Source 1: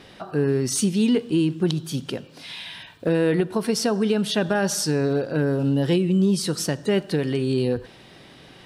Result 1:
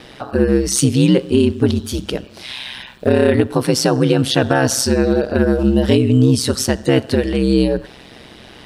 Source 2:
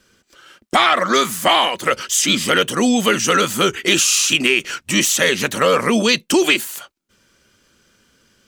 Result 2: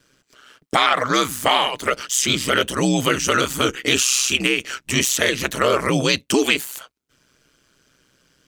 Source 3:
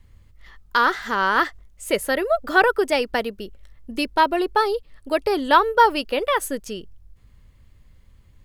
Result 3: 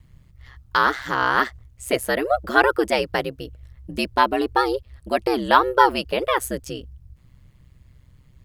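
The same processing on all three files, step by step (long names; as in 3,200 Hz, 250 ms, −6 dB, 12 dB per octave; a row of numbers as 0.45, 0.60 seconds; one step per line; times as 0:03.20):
ring modulation 65 Hz
normalise the peak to −1.5 dBFS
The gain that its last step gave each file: +10.0, 0.0, +2.5 decibels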